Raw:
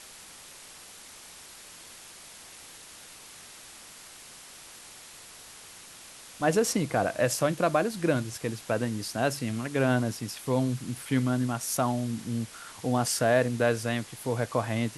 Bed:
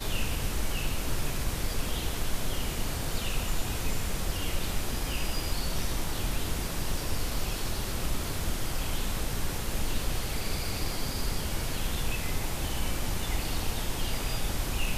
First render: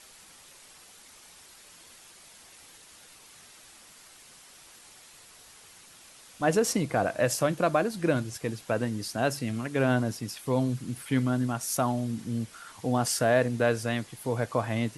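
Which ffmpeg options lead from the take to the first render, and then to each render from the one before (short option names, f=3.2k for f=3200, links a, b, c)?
-af "afftdn=nr=6:nf=-48"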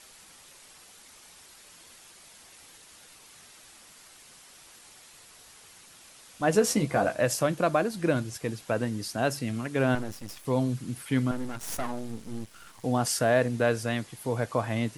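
-filter_complex "[0:a]asettb=1/sr,asplit=3[a][b][c];[a]atrim=end=6.534[d];[b]atrim=start=6.53:end=7.15,asetpts=PTS-STARTPTS,afade=t=in:d=0.004:c=qsin,afade=t=out:st=0.616:d=0.004:c=qsin,asplit=2[e][f];[f]adelay=14,volume=-4.5dB[g];[e][g]amix=inputs=2:normalize=0,atrim=end_sample=27342[h];[c]atrim=start=7.146[i];[d][h]acrossfade=d=0.004:c1=hsin:c2=qsin[j];[j][i]acrossfade=d=0.004:c1=qsin:c2=hsin,asettb=1/sr,asplit=3[k][l][m];[k]atrim=end=9.954[n];[l]atrim=start=9.95:end=10.45,asetpts=PTS-STARTPTS,afade=t=in:d=0.004:c=qsin,afade=t=out:st=0.496:d=0.004:c=qsin,aeval=exprs='max(val(0),0)':c=same[o];[m]atrim=start=10.446[p];[n][o]acrossfade=d=0.004:c1=hsin:c2=qsin[q];[q][p]acrossfade=d=0.004:c1=qsin:c2=hsin,asettb=1/sr,asplit=3[r][s][t];[r]atrim=end=11.314[u];[s]atrim=start=11.31:end=12.84,asetpts=PTS-STARTPTS,afade=t=in:d=0.004:c=qsin,afade=t=out:st=1.526:d=0.004:c=qsin,aeval=exprs='max(val(0),0)':c=same[v];[t]atrim=start=12.836[w];[u][v]acrossfade=d=0.004:c1=hsin:c2=qsin[x];[x][w]acrossfade=d=0.004:c1=qsin:c2=hsin"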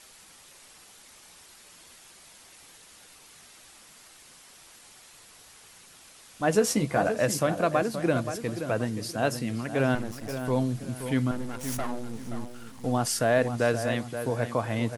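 -filter_complex "[0:a]asplit=2[a][b];[b]adelay=526,lowpass=f=2.4k:p=1,volume=-9dB,asplit=2[c][d];[d]adelay=526,lowpass=f=2.4k:p=1,volume=0.34,asplit=2[e][f];[f]adelay=526,lowpass=f=2.4k:p=1,volume=0.34,asplit=2[g][h];[h]adelay=526,lowpass=f=2.4k:p=1,volume=0.34[i];[a][c][e][g][i]amix=inputs=5:normalize=0"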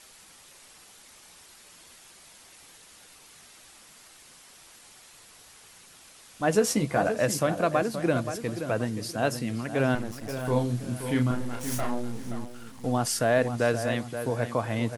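-filter_complex "[0:a]asettb=1/sr,asplit=3[a][b][c];[a]atrim=end=10.354[d];[b]atrim=start=10.35:end=12.32,asetpts=PTS-STARTPTS,afade=t=in:d=0.004:c=qsin,afade=t=out:st=1.966:d=0.004:c=qsin,asplit=2[e][f];[f]adelay=33,volume=-4dB[g];[e][g]amix=inputs=2:normalize=0,atrim=end_sample=86877[h];[c]atrim=start=12.316[i];[d][h]acrossfade=d=0.004:c1=hsin:c2=qsin[j];[j][i]acrossfade=d=0.004:c1=qsin:c2=hsin"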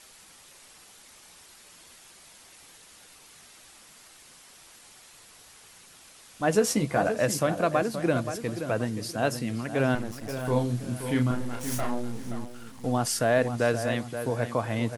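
-af anull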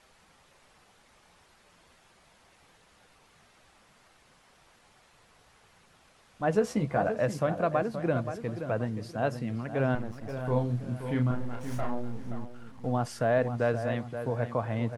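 -af "lowpass=f=1.1k:p=1,equalizer=f=310:w=1.5:g=-5"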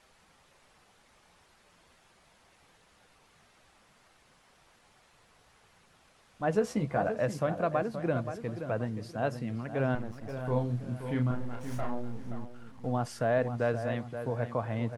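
-af "volume=-2dB"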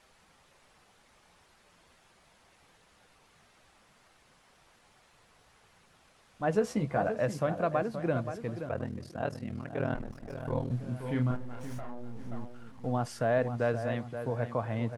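-filter_complex "[0:a]asettb=1/sr,asplit=3[a][b][c];[a]atrim=end=8.674[d];[b]atrim=start=8.67:end=10.71,asetpts=PTS-STARTPTS,afade=t=in:d=0.004:c=qsin,afade=t=out:st=2.036:d=0.004:c=qsin,aeval=exprs='val(0)*sin(2*PI*20*n/s)':c=same[e];[c]atrim=start=10.706[f];[d][e]acrossfade=d=0.004:c1=hsin:c2=qsin[g];[g][f]acrossfade=d=0.004:c1=qsin:c2=hsin,asettb=1/sr,asplit=3[h][i][j];[h]atrim=end=11.364[k];[i]atrim=start=11.36:end=12.32,asetpts=PTS-STARTPTS,afade=t=in:d=0.004:c=qsin,afade=t=out:st=0.956:d=0.004:c=qsin,acompressor=threshold=-34dB:ratio=6:attack=3.2:release=140:knee=1:detection=peak[l];[j]atrim=start=12.316[m];[k][l]acrossfade=d=0.004:c1=hsin:c2=qsin[n];[n][m]acrossfade=d=0.004:c1=qsin:c2=hsin"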